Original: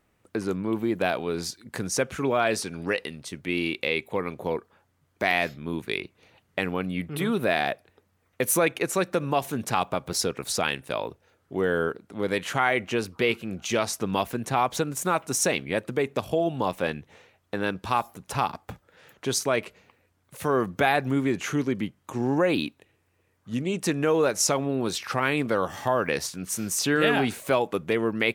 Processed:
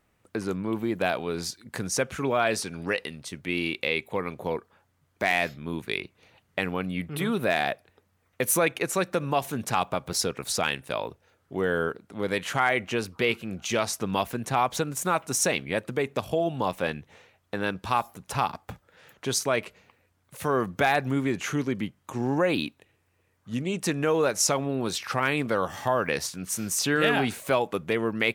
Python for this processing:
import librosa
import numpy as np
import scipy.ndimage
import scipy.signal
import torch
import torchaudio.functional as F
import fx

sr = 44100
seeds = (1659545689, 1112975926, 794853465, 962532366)

y = fx.peak_eq(x, sr, hz=340.0, db=-2.5, octaves=1.2)
y = np.clip(y, -10.0 ** (-10.5 / 20.0), 10.0 ** (-10.5 / 20.0))